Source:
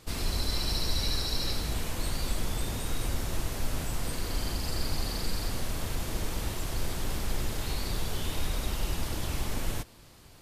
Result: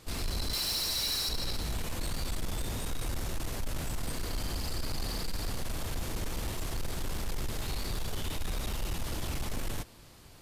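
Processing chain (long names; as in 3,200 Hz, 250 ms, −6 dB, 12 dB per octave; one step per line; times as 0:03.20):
0:00.53–0:01.29: spectral tilt +2.5 dB per octave
soft clipping −27 dBFS, distortion −13 dB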